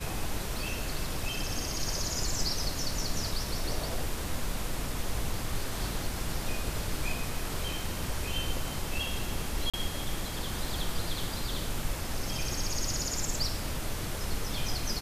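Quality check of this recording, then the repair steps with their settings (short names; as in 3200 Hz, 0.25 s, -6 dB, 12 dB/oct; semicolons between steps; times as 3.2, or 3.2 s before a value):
9.7–9.74 gap 36 ms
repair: interpolate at 9.7, 36 ms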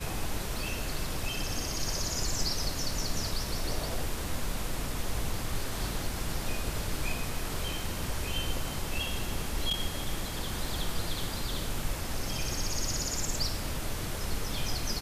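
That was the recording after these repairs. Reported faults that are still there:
none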